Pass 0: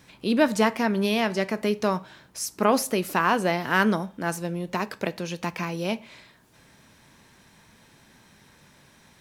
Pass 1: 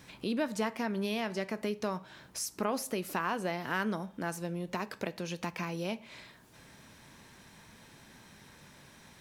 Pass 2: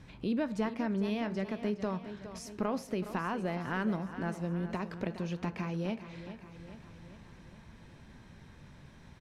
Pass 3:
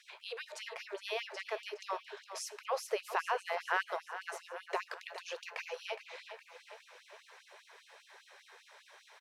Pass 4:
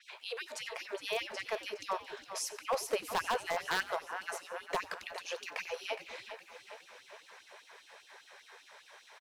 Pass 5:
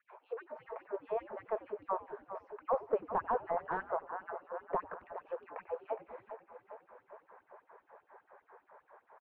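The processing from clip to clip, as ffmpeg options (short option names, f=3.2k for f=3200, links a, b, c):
-af "acompressor=threshold=-38dB:ratio=2"
-filter_complex "[0:a]aemphasis=mode=reproduction:type=bsi,asplit=2[a][b];[b]aecho=0:1:414|828|1242|1656|2070|2484:0.251|0.146|0.0845|0.049|0.0284|0.0165[c];[a][c]amix=inputs=2:normalize=0,volume=-3dB"
-af "afftfilt=real='re*gte(b*sr/1024,360*pow(2700/360,0.5+0.5*sin(2*PI*5*pts/sr)))':imag='im*gte(b*sr/1024,360*pow(2700/360,0.5+0.5*sin(2*PI*5*pts/sr)))':win_size=1024:overlap=0.75,volume=5dB"
-filter_complex "[0:a]aeval=exprs='0.0531*(abs(mod(val(0)/0.0531+3,4)-2)-1)':c=same,asplit=5[a][b][c][d][e];[b]adelay=92,afreqshift=-110,volume=-19.5dB[f];[c]adelay=184,afreqshift=-220,volume=-25dB[g];[d]adelay=276,afreqshift=-330,volume=-30.5dB[h];[e]adelay=368,afreqshift=-440,volume=-36dB[i];[a][f][g][h][i]amix=inputs=5:normalize=0,adynamicequalizer=threshold=0.00141:dfrequency=6600:dqfactor=0.7:tfrequency=6600:tqfactor=0.7:attack=5:release=100:ratio=0.375:range=2.5:mode=boostabove:tftype=highshelf,volume=2.5dB"
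-af "lowpass=f=1.2k:w=0.5412,lowpass=f=1.2k:w=1.3066,volume=1.5dB"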